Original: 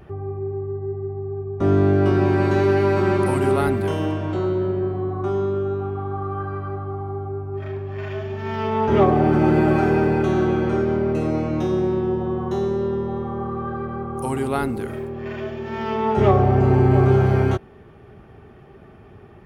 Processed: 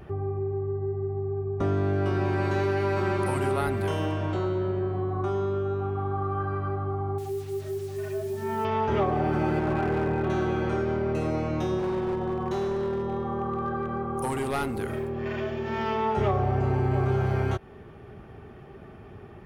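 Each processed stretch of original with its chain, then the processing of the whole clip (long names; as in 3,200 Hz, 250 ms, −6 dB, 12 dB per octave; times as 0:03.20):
0:07.18–0:08.65: expanding power law on the bin magnitudes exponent 1.6 + parametric band 100 Hz −9 dB 0.43 octaves + bit-depth reduction 8 bits, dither none
0:09.59–0:10.30: high-frequency loss of the air 420 metres + hard clipping −14.5 dBFS
0:11.79–0:14.75: parametric band 93 Hz −5.5 dB 0.87 octaves + hard clipping −19.5 dBFS
whole clip: dynamic equaliser 250 Hz, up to −6 dB, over −30 dBFS, Q 0.78; downward compressor 2.5 to 1, threshold −24 dBFS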